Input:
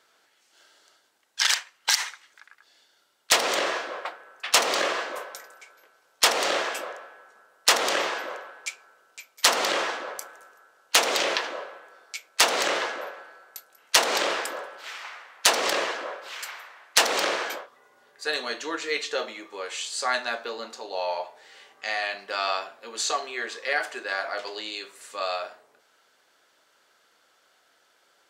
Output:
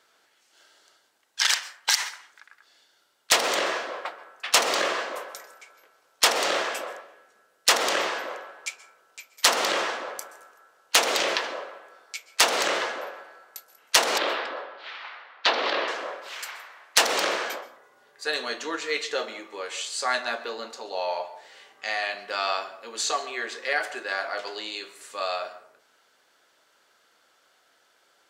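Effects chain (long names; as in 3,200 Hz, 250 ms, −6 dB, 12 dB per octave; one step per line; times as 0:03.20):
0:07.01–0:07.69: parametric band 980 Hz −9.5 dB 1.4 octaves
0:14.18–0:15.88: elliptic band-pass filter 240–4,100 Hz, stop band 50 dB
dense smooth reverb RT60 0.53 s, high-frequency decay 0.45×, pre-delay 115 ms, DRR 16 dB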